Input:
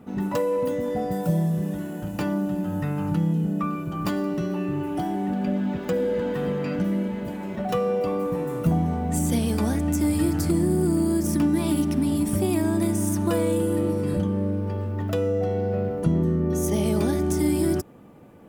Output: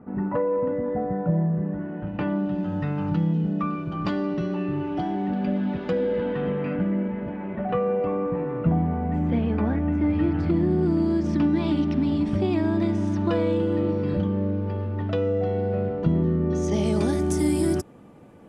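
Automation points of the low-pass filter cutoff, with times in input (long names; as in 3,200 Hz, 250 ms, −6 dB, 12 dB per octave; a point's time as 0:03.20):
low-pass filter 24 dB per octave
0:01.76 1,800 Hz
0:02.63 4,600 Hz
0:05.89 4,600 Hz
0:06.94 2,400 Hz
0:09.97 2,400 Hz
0:11.02 4,300 Hz
0:16.35 4,300 Hz
0:17.24 11,000 Hz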